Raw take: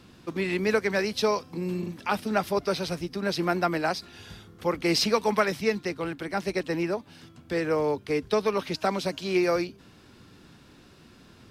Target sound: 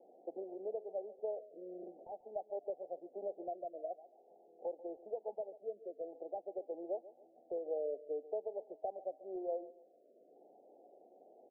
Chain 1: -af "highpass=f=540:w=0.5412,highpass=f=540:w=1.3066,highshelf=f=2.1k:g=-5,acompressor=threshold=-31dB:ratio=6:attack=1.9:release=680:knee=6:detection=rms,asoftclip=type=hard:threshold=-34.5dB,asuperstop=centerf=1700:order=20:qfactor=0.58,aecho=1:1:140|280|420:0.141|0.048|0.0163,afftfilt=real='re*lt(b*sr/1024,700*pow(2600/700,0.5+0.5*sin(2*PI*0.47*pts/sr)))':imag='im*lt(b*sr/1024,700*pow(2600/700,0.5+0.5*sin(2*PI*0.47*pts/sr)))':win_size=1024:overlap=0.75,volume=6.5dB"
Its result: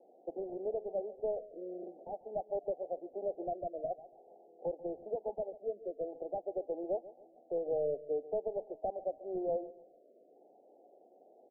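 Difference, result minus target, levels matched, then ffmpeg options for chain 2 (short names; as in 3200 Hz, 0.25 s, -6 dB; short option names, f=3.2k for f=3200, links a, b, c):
compressor: peak gain reduction -6 dB
-af "highpass=f=540:w=0.5412,highpass=f=540:w=1.3066,highshelf=f=2.1k:g=-5,acompressor=threshold=-38.5dB:ratio=6:attack=1.9:release=680:knee=6:detection=rms,asoftclip=type=hard:threshold=-34.5dB,asuperstop=centerf=1700:order=20:qfactor=0.58,aecho=1:1:140|280|420:0.141|0.048|0.0163,afftfilt=real='re*lt(b*sr/1024,700*pow(2600/700,0.5+0.5*sin(2*PI*0.47*pts/sr)))':imag='im*lt(b*sr/1024,700*pow(2600/700,0.5+0.5*sin(2*PI*0.47*pts/sr)))':win_size=1024:overlap=0.75,volume=6.5dB"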